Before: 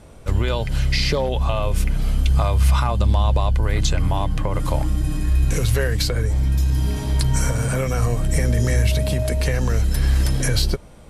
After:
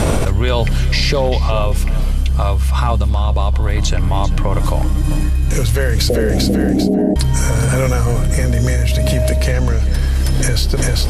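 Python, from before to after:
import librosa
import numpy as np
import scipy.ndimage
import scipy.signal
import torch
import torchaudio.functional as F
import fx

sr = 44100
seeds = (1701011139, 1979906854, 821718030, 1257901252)

p1 = fx.cheby1_bandpass(x, sr, low_hz=180.0, high_hz=740.0, order=5, at=(6.09, 7.16))
p2 = fx.air_absorb(p1, sr, metres=50.0, at=(9.51, 9.99))
p3 = p2 + fx.echo_feedback(p2, sr, ms=394, feedback_pct=32, wet_db=-15.5, dry=0)
p4 = fx.env_flatten(p3, sr, amount_pct=100)
y = p4 * 10.0 ** (-1.5 / 20.0)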